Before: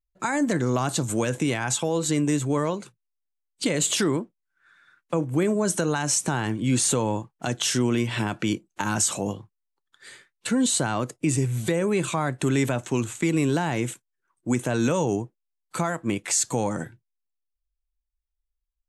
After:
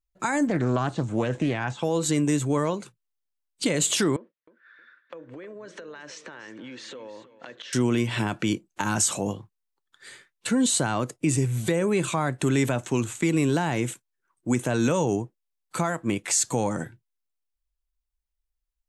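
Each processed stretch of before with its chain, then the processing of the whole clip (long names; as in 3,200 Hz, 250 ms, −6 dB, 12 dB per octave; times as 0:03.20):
0:00.47–0:01.83: de-essing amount 75% + high-frequency loss of the air 120 metres + highs frequency-modulated by the lows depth 0.19 ms
0:04.16–0:07.73: loudspeaker in its box 340–4,300 Hz, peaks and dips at 530 Hz +8 dB, 760 Hz −9 dB, 1,800 Hz +8 dB + downward compressor 16 to 1, threshold −37 dBFS + repeating echo 314 ms, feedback 29%, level −15 dB
whole clip: no processing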